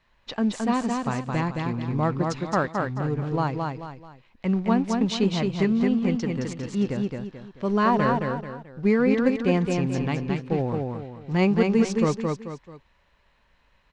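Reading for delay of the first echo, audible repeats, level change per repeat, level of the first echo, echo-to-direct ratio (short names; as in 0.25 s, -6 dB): 0.218 s, 3, -8.5 dB, -3.5 dB, -3.0 dB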